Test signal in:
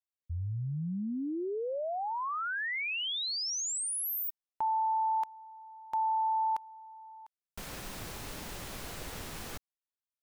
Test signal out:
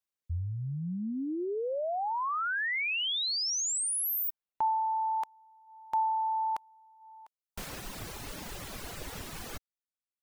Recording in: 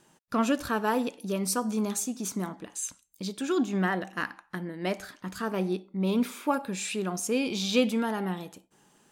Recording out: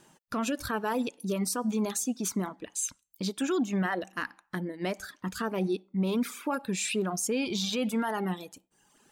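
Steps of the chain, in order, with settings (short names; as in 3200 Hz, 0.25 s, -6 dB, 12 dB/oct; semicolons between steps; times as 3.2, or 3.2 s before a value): reverb removal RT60 1 s; limiter -24 dBFS; gain +3 dB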